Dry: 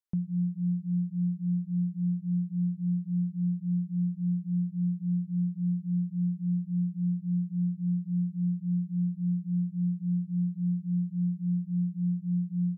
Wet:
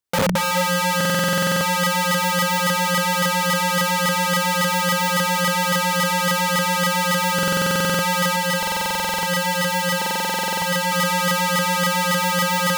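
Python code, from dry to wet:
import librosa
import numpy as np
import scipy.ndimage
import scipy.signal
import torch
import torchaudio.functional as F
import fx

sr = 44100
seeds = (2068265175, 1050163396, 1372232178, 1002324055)

y = fx.peak_eq(x, sr, hz=120.0, db=8.0, octaves=2.3)
y = fx.hum_notches(y, sr, base_hz=50, count=5)
y = fx.echo_thinned(y, sr, ms=63, feedback_pct=49, hz=260.0, wet_db=-23)
y = fx.rev_schroeder(y, sr, rt60_s=1.5, comb_ms=28, drr_db=-0.5)
y = (np.mod(10.0 ** (21.5 / 20.0) * y + 1.0, 2.0) - 1.0) / 10.0 ** (21.5 / 20.0)
y = fx.notch_comb(y, sr, f0_hz=210.0, at=(8.36, 10.92))
y = fx.buffer_glitch(y, sr, at_s=(0.96, 7.34, 8.58, 9.97), block=2048, repeats=13)
y = y * librosa.db_to_amplitude(6.5)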